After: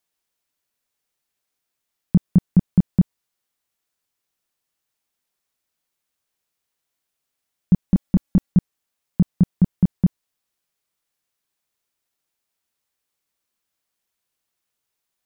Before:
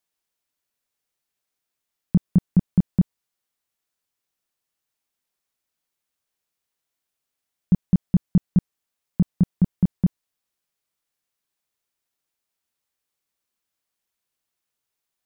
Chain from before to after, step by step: 7.89–8.52 s: comb 3.6 ms, depth 72%; trim +2.5 dB

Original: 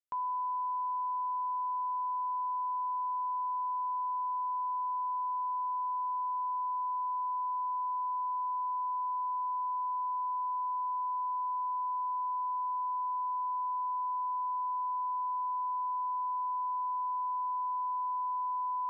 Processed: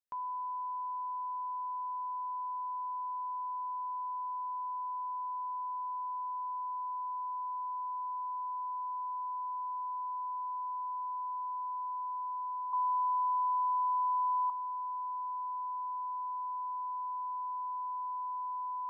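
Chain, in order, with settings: 12.73–14.50 s: resonant high-pass 950 Hz, resonance Q 2.2; trim -4 dB

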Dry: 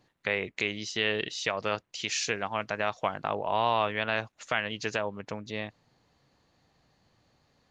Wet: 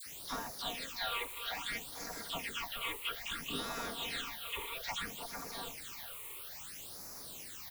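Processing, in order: spectral gate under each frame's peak -20 dB weak; treble shelf 4 kHz -9.5 dB; comb 4.3 ms, depth 72%; on a send: multi-head delay 149 ms, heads second and third, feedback 45%, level -12 dB; on the sum: waveshaping leveller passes 2; transient shaper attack +4 dB, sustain -9 dB; in parallel at -12 dB: word length cut 6-bit, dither triangular; on the sum: saturation -33 dBFS, distortion -12 dB; phase shifter stages 8, 0.6 Hz, lowest notch 200–3100 Hz; phase dispersion lows, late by 61 ms, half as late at 1.5 kHz; trim +3.5 dB

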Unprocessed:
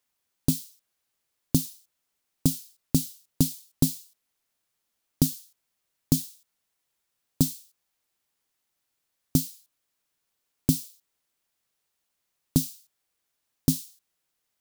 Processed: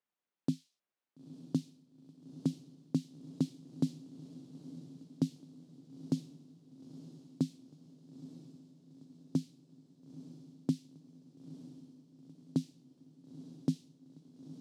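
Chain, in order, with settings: high-pass 160 Hz 24 dB/octave; tape spacing loss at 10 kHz 26 dB; on a send: echo that smears into a reverb 924 ms, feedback 56%, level -13 dB; on the sum: trim -6 dB

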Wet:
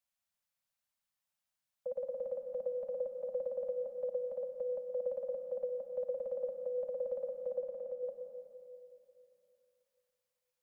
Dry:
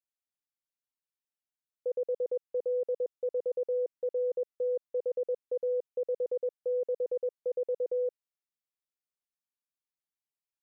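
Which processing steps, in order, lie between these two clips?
Chebyshev band-stop 240–540 Hz, order 4; 7.60–8.03 s: level held to a coarse grid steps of 12 dB; on a send: reverberation RT60 2.8 s, pre-delay 93 ms, DRR 5 dB; on the sum: trim +5.5 dB

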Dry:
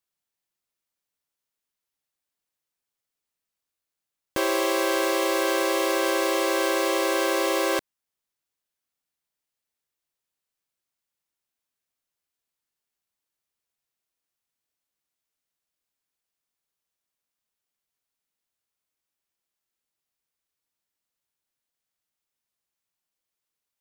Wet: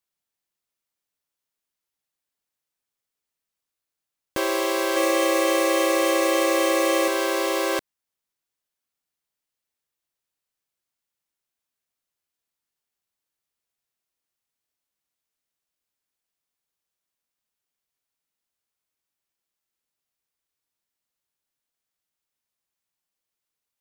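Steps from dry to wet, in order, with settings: 4.96–7.08 s: comb 3.5 ms, depth 86%

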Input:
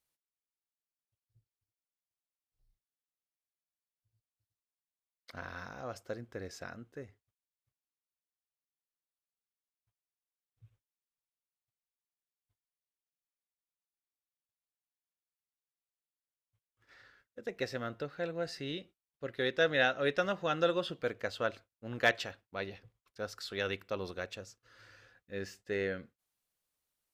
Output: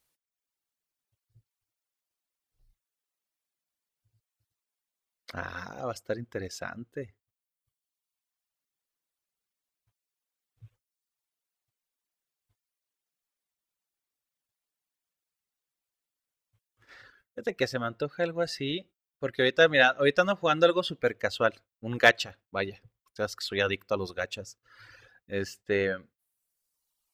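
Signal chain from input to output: reverb removal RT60 1.3 s; trim +8.5 dB

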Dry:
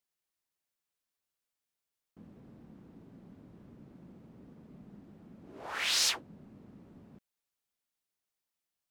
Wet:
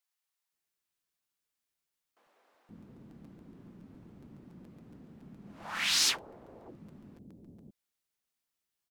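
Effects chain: bands offset in time highs, lows 520 ms, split 610 Hz; crackling interface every 0.14 s, samples 256, repeat, from 0.58 s; trim +1.5 dB

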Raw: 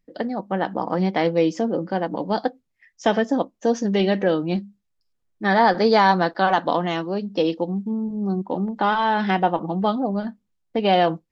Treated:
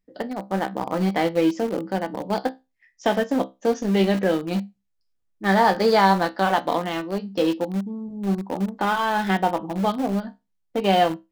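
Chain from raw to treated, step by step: feedback comb 65 Hz, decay 0.22 s, harmonics all, mix 80%; in parallel at -7.5 dB: small samples zeroed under -24.5 dBFS; on the sum: trim +1 dB

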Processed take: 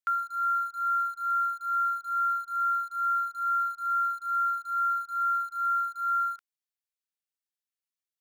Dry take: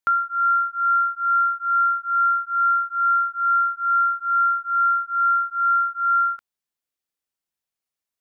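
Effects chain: high-pass 1.4 kHz 12 dB/octave; in parallel at -9.5 dB: word length cut 6-bit, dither none; on the sum: trim -7.5 dB

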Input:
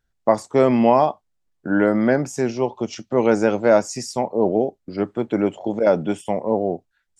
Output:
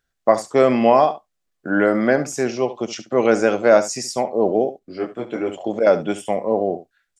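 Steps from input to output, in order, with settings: bass shelf 270 Hz -10.5 dB; band-stop 900 Hz, Q 7; delay 70 ms -14 dB; 4.79–5.50 s: detune thickener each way 20 cents; trim +4 dB

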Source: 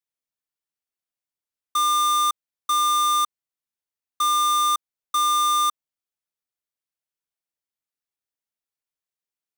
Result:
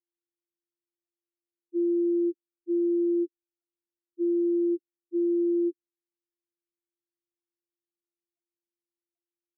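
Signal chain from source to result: sorted samples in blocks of 128 samples; loudest bins only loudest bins 1

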